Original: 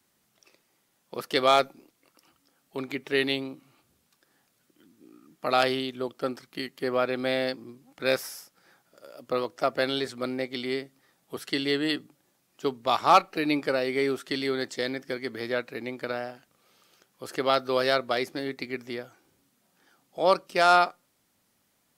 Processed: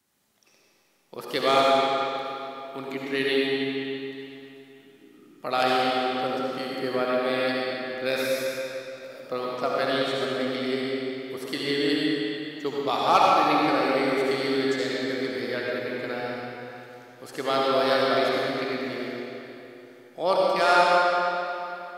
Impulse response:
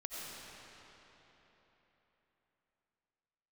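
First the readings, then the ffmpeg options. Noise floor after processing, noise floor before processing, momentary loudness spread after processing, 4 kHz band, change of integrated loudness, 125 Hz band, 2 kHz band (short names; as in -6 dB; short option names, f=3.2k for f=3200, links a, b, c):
-59 dBFS, -71 dBFS, 17 LU, +2.5 dB, +2.0 dB, +2.0 dB, +3.0 dB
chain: -filter_complex "[1:a]atrim=start_sample=2205,asetrate=57330,aresample=44100[a];[0:a][a]afir=irnorm=-1:irlink=0,volume=4.5dB"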